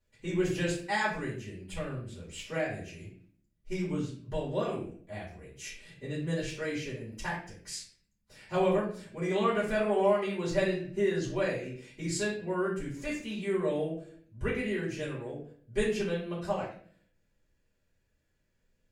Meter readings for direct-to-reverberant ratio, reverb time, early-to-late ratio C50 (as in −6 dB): −10.0 dB, 0.50 s, 4.5 dB